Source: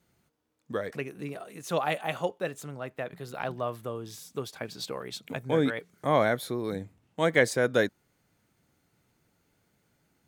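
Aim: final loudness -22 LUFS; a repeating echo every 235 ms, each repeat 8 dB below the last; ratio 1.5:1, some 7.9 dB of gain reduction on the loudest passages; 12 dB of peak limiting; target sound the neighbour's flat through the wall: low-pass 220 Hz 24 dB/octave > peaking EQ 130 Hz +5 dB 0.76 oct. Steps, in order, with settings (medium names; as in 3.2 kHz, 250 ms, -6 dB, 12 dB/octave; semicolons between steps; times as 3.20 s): compression 1.5:1, threshold -40 dBFS; peak limiter -27 dBFS; low-pass 220 Hz 24 dB/octave; peaking EQ 130 Hz +5 dB 0.76 oct; feedback delay 235 ms, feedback 40%, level -8 dB; trim +23.5 dB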